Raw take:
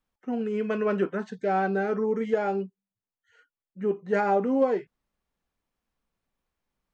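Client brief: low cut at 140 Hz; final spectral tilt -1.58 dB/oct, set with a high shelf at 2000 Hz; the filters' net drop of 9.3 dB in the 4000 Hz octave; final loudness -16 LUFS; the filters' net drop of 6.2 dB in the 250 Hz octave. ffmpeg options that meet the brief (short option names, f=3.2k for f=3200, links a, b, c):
-af "highpass=140,equalizer=f=250:t=o:g=-7,highshelf=f=2k:g=-5,equalizer=f=4k:t=o:g=-8.5,volume=14dB"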